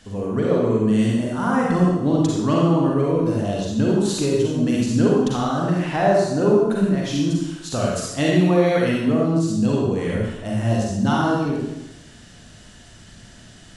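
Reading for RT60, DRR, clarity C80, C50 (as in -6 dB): 0.95 s, -4.0 dB, 1.5 dB, -1.5 dB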